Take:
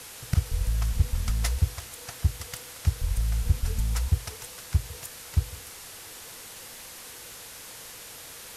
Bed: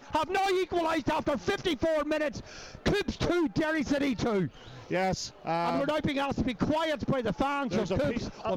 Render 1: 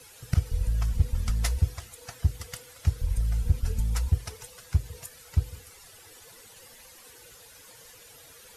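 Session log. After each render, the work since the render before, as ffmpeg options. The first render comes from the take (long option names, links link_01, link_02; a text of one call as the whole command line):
ffmpeg -i in.wav -af "afftdn=noise_reduction=12:noise_floor=-44" out.wav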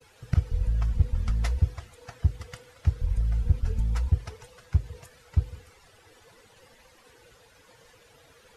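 ffmpeg -i in.wav -af "agate=range=-33dB:threshold=-49dB:ratio=3:detection=peak,aemphasis=mode=reproduction:type=75fm" out.wav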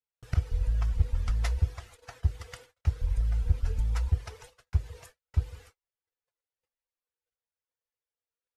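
ffmpeg -i in.wav -af "agate=range=-44dB:threshold=-49dB:ratio=16:detection=peak,equalizer=frequency=180:width=0.91:gain=-10.5" out.wav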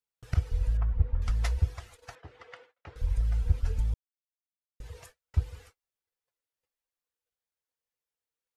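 ffmpeg -i in.wav -filter_complex "[0:a]asettb=1/sr,asplit=3[link_01][link_02][link_03];[link_01]atrim=end=0.774[link_04];[link_02]atrim=start=0.77:end=1.22,asetpts=PTS-STARTPTS,afade=type=in:duration=0.004:curve=qsin,afade=type=out:start_time=0.446:duration=0.004:curve=qsin,lowpass=1500[link_05];[link_03]atrim=start=1.216[link_06];[link_04][link_05]acrossfade=duration=0.004:curve1=hsin:curve2=qsin[link_07];[link_07][link_06]acrossfade=duration=0.004:curve1=qsin:curve2=hsin,asettb=1/sr,asplit=3[link_08][link_09][link_10];[link_08]atrim=end=2.154[link_11];[link_09]atrim=start=2.15:end=2.96,asetpts=PTS-STARTPTS,afade=type=in:duration=0.004:curve=qsin,afade=type=out:start_time=0.806:duration=0.004:curve=qsin,highpass=320,lowpass=2500[link_12];[link_10]atrim=start=2.956[link_13];[link_11][link_12]acrossfade=duration=0.004:curve1=hsin:curve2=qsin[link_14];[link_14][link_13]acrossfade=duration=0.004:curve1=qsin:curve2=hsin,asplit=3[link_15][link_16][link_17];[link_15]atrim=end=3.94,asetpts=PTS-STARTPTS,afade=type=out:start_time=3.936:duration=0.004:curve=hsin[link_18];[link_16]atrim=start=3.94:end=4.8,asetpts=PTS-STARTPTS,volume=0[link_19];[link_17]atrim=start=4.8,asetpts=PTS-STARTPTS,afade=type=in:duration=0.004:curve=hsin[link_20];[link_18][link_19][link_20]concat=n=3:v=0:a=1" out.wav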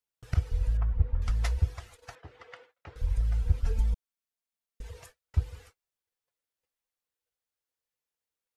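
ffmpeg -i in.wav -filter_complex "[0:a]asettb=1/sr,asplit=3[link_01][link_02][link_03];[link_01]atrim=end=3.664[link_04];[link_02]atrim=start=3.66:end=4.91,asetpts=PTS-STARTPTS,afade=type=in:duration=0.004:curve=qsin,afade=type=out:start_time=1.246:duration=0.004:curve=qsin,aecho=1:1:4.4:0.7,atrim=end_sample=55125[link_05];[link_03]atrim=start=4.906[link_06];[link_04][link_05]acrossfade=duration=0.004:curve1=hsin:curve2=qsin[link_07];[link_07][link_06]acrossfade=duration=0.004:curve1=qsin:curve2=hsin" out.wav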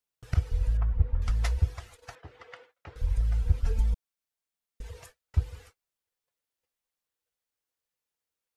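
ffmpeg -i in.wav -af "volume=1dB" out.wav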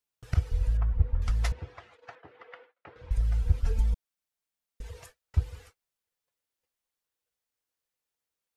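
ffmpeg -i in.wav -filter_complex "[0:a]asettb=1/sr,asplit=3[link_01][link_02][link_03];[link_01]atrim=end=1.524[link_04];[link_02]atrim=start=1.52:end=3.11,asetpts=PTS-STARTPTS,afade=type=in:duration=0.004:curve=qsin,afade=type=out:start_time=1.586:duration=0.004:curve=qsin,highpass=200,lowpass=2700[link_05];[link_03]atrim=start=3.106[link_06];[link_04][link_05]acrossfade=duration=0.004:curve1=hsin:curve2=qsin[link_07];[link_07][link_06]acrossfade=duration=0.004:curve1=qsin:curve2=hsin" out.wav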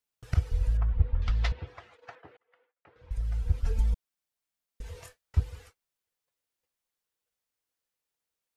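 ffmpeg -i in.wav -filter_complex "[0:a]asettb=1/sr,asplit=3[link_01][link_02][link_03];[link_01]atrim=end=0.884[link_04];[link_02]atrim=start=0.88:end=1.67,asetpts=PTS-STARTPTS,afade=type=in:duration=0.004:curve=qsin,afade=type=out:start_time=0.786:duration=0.004:curve=qsin,lowpass=frequency=3800:width_type=q:width=1.6[link_05];[link_03]atrim=start=1.666[link_06];[link_04][link_05]acrossfade=duration=0.004:curve1=hsin:curve2=qsin[link_07];[link_07][link_06]acrossfade=duration=0.004:curve1=qsin:curve2=hsin,asettb=1/sr,asplit=3[link_08][link_09][link_10];[link_08]atrim=end=4.854[link_11];[link_09]atrim=start=4.85:end=5.4,asetpts=PTS-STARTPTS,afade=type=in:duration=0.004:curve=qsin,afade=type=out:start_time=0.546:duration=0.004:curve=qsin,asplit=2[link_12][link_13];[link_13]adelay=24,volume=-5.5dB[link_14];[link_12][link_14]amix=inputs=2:normalize=0,atrim=end_sample=24255[link_15];[link_10]atrim=start=5.396[link_16];[link_11][link_15]acrossfade=duration=0.004:curve1=hsin:curve2=qsin[link_17];[link_17][link_16]acrossfade=duration=0.004:curve1=qsin:curve2=hsin,asplit=2[link_18][link_19];[link_18]atrim=end=2.37,asetpts=PTS-STARTPTS,afade=type=out:start_time=2.366:duration=0.004:curve=hsin[link_20];[link_19]atrim=start=2.37,asetpts=PTS-STARTPTS,afade=type=in:duration=1.5[link_21];[link_20][link_21]concat=n=2:v=0:a=1" out.wav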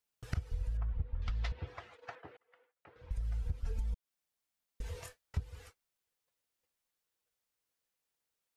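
ffmpeg -i in.wav -af "acompressor=threshold=-33dB:ratio=5" out.wav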